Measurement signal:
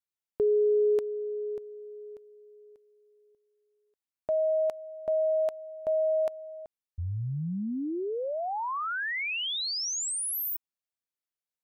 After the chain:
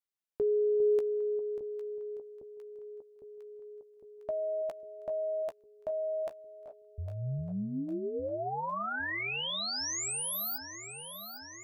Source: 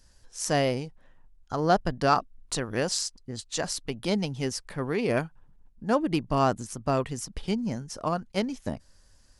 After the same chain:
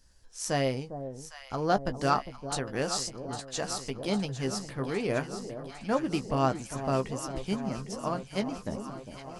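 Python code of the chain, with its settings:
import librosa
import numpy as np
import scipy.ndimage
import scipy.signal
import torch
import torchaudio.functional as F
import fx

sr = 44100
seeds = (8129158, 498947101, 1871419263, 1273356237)

y = fx.doubler(x, sr, ms=15.0, db=-9.5)
y = fx.echo_alternate(y, sr, ms=403, hz=920.0, feedback_pct=83, wet_db=-10)
y = y * 10.0 ** (-4.0 / 20.0)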